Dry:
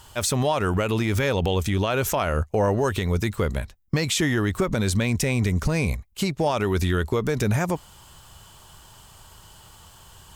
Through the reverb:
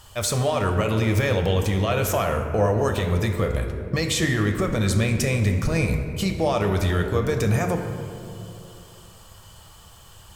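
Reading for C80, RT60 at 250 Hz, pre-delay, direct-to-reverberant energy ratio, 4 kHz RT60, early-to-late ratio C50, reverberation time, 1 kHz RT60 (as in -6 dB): 7.5 dB, 2.9 s, 6 ms, 3.5 dB, 1.3 s, 6.0 dB, 2.7 s, 2.3 s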